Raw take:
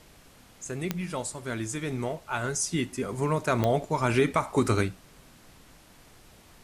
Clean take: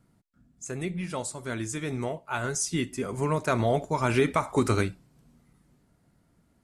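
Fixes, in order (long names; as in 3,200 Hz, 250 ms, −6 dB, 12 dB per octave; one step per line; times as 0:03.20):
click removal
noise reduction from a noise print 11 dB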